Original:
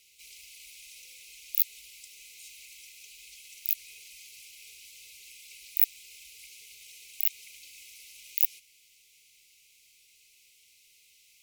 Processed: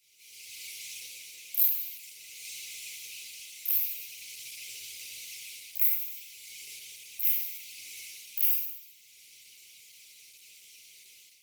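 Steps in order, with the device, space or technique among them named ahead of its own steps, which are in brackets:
far-field microphone of a smart speaker (convolution reverb RT60 0.85 s, pre-delay 23 ms, DRR −4.5 dB; high-pass filter 100 Hz 24 dB per octave; automatic gain control gain up to 10 dB; level −6 dB; Opus 16 kbit/s 48,000 Hz)

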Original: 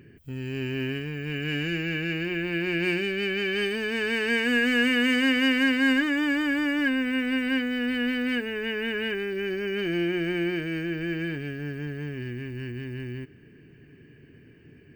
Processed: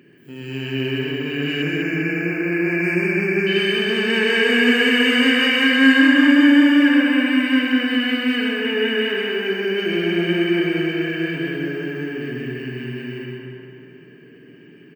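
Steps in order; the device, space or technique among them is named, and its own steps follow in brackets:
PA in a hall (high-pass filter 170 Hz 24 dB per octave; parametric band 3,100 Hz +4.5 dB 0.35 octaves; single-tap delay 129 ms −5 dB; convolution reverb RT60 1.7 s, pre-delay 44 ms, DRR 1 dB)
0:01.62–0:03.47: elliptic band-stop filter 2,500–5,000 Hz, stop band 40 dB
feedback echo with a low-pass in the loop 199 ms, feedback 59%, low-pass 3,200 Hz, level −4 dB
level +2 dB

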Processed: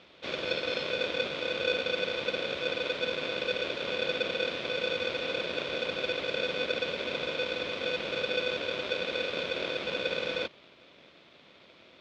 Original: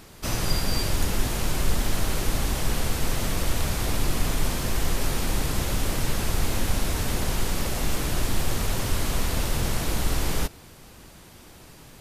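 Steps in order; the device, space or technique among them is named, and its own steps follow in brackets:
ring modulator pedal into a guitar cabinet (ring modulator with a square carrier 500 Hz; loudspeaker in its box 92–4,100 Hz, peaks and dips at 110 Hz −6 dB, 460 Hz −6 dB, 810 Hz −8 dB, 1,600 Hz −6 dB, 2,300 Hz +5 dB, 3,500 Hz +7 dB)
level −7 dB

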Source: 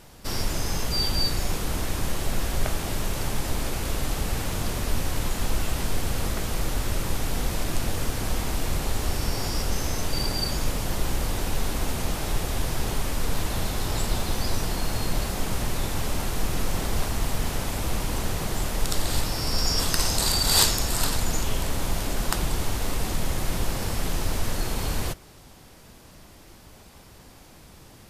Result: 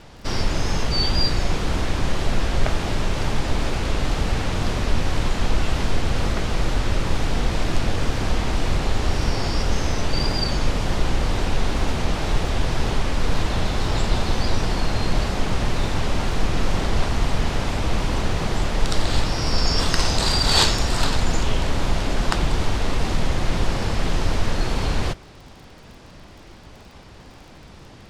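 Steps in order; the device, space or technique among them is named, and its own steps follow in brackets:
lo-fi chain (low-pass filter 4,800 Hz 12 dB per octave; tape wow and flutter; surface crackle 31 per second −44 dBFS)
level +5.5 dB

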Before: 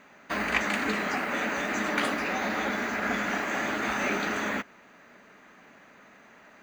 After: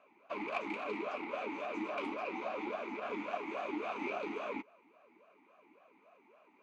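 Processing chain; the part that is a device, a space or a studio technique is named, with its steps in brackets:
talk box (tube saturation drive 23 dB, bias 0.75; formant filter swept between two vowels a-u 3.6 Hz)
level +6 dB

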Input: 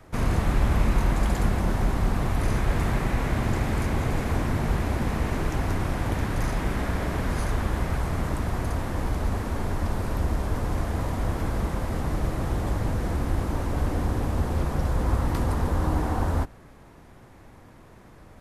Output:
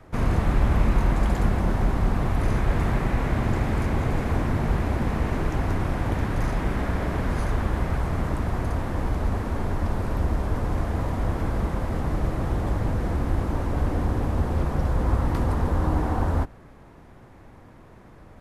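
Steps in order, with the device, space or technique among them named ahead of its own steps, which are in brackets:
behind a face mask (high-shelf EQ 3,500 Hz −8 dB)
level +1.5 dB

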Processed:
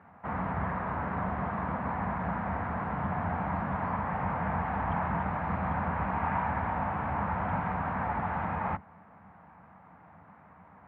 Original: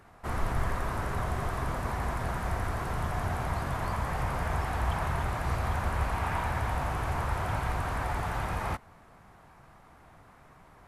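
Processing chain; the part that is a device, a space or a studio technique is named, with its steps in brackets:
sub-octave bass pedal (sub-octave generator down 1 octave, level −1 dB; loudspeaker in its box 83–2,200 Hz, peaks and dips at 120 Hz −9 dB, 190 Hz +8 dB, 370 Hz −9 dB, 870 Hz +5 dB)

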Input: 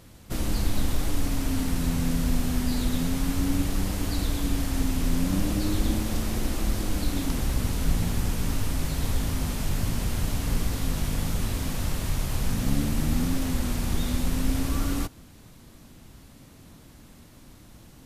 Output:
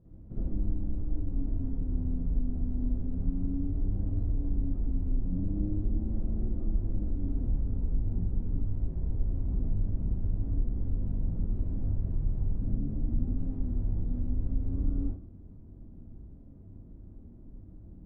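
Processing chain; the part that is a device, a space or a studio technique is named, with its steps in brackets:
television next door (downward compressor 3 to 1, threshold −30 dBFS, peak gain reduction 10.5 dB; low-pass filter 320 Hz 12 dB per octave; convolution reverb RT60 0.40 s, pre-delay 48 ms, DRR −8 dB)
level −7.5 dB

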